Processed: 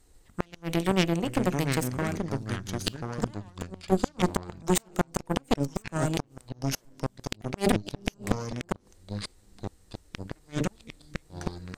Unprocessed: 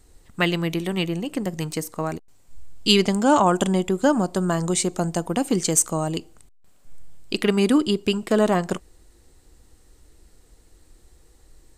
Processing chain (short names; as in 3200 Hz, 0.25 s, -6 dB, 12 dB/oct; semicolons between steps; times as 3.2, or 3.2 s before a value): notches 50/100/150/200/250/300/350/400/450/500 Hz; added harmonics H 6 -36 dB, 7 -31 dB, 8 -15 dB, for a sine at -2.5 dBFS; flipped gate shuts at -8 dBFS, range -35 dB; in parallel at -7.5 dB: crossover distortion -35 dBFS; on the sum: echoes that change speed 0.372 s, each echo -5 st, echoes 2, each echo -6 dB; gain -3 dB